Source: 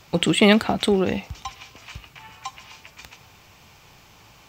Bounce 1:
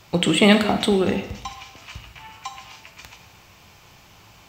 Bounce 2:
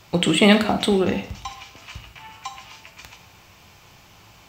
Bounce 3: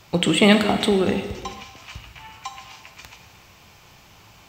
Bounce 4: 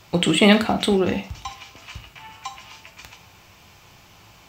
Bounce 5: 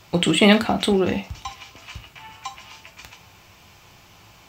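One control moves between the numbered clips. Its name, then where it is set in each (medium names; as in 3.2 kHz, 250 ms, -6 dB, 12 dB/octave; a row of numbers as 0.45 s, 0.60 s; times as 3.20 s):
gated-style reverb, gate: 330 ms, 210 ms, 530 ms, 130 ms, 90 ms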